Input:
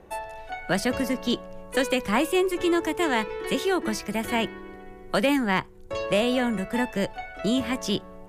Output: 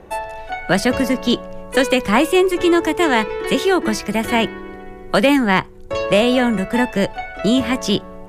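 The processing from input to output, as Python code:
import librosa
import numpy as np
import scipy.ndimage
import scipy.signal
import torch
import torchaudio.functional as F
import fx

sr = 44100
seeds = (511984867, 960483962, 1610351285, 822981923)

y = fx.high_shelf(x, sr, hz=8500.0, db=-4.5)
y = y * librosa.db_to_amplitude(8.5)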